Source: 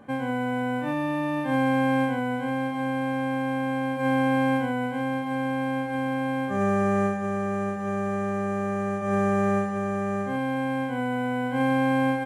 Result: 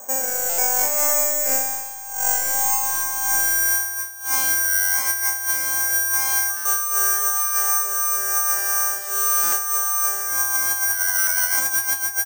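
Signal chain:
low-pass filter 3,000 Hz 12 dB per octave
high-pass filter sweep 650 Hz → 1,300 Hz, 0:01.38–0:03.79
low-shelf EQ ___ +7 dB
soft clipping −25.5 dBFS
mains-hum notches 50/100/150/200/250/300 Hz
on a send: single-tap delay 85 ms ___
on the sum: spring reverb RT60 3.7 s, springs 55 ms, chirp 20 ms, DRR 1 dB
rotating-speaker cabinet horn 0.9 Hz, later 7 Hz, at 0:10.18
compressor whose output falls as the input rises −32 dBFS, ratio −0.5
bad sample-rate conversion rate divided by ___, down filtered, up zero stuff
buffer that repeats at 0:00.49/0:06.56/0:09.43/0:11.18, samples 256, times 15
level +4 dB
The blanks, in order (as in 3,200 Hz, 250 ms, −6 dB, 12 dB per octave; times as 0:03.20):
170 Hz, −20 dB, 6×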